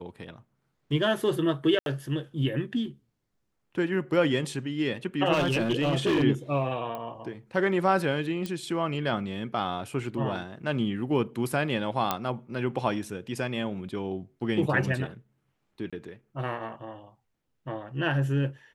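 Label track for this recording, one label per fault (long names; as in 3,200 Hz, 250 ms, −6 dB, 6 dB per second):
1.790000	1.860000	drop-out 72 ms
5.320000	6.240000	clipping −20.5 dBFS
6.950000	6.950000	click −23 dBFS
8.460000	8.460000	click −19 dBFS
12.110000	12.110000	click −10 dBFS
15.900000	15.930000	drop-out 26 ms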